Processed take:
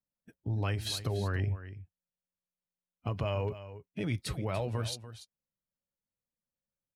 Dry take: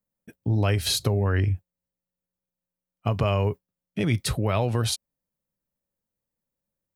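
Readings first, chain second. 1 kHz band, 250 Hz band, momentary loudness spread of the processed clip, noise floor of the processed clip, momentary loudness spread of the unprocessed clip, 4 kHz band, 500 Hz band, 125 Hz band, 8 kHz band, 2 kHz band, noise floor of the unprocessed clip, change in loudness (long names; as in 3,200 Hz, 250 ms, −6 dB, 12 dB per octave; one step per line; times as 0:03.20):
−9.5 dB, −10.0 dB, 13 LU, below −85 dBFS, 9 LU, −10.0 dB, −8.5 dB, −9.0 dB, −12.0 dB, −8.5 dB, below −85 dBFS, −9.5 dB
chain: spectral magnitudes quantised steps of 15 dB
high-shelf EQ 10,000 Hz −7 dB
single-tap delay 290 ms −13.5 dB
level −9 dB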